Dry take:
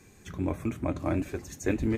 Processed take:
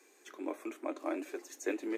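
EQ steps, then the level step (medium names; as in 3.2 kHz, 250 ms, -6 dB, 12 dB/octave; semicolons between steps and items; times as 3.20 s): steep high-pass 300 Hz 48 dB/octave; -4.5 dB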